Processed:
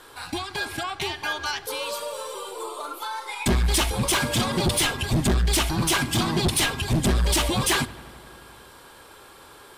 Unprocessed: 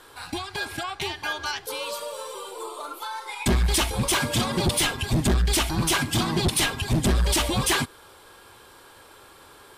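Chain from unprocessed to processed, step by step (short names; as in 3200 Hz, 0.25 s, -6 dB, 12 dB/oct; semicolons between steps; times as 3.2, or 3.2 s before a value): notches 50/100 Hz; in parallel at -6.5 dB: soft clip -24.5 dBFS, distortion -11 dB; on the sum: darkening echo 86 ms, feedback 83%, low-pass 4700 Hz, level -22 dB; gain -1.5 dB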